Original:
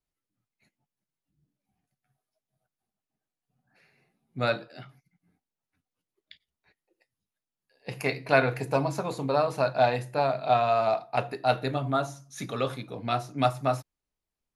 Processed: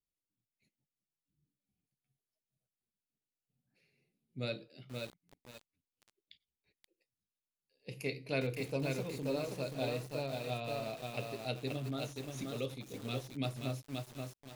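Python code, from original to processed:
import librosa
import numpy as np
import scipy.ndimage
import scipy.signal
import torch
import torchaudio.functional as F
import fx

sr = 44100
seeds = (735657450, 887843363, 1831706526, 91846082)

y = fx.band_shelf(x, sr, hz=1100.0, db=-14.5, octaves=1.7)
y = fx.echo_crushed(y, sr, ms=529, feedback_pct=35, bits=7, wet_db=-3)
y = F.gain(torch.from_numpy(y), -8.0).numpy()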